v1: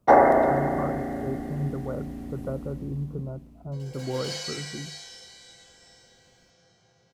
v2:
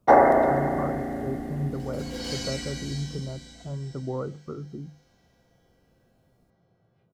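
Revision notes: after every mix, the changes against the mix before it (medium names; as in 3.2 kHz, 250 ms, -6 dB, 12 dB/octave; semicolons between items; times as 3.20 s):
second sound: entry -2.00 s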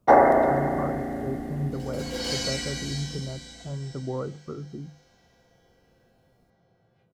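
second sound +4.5 dB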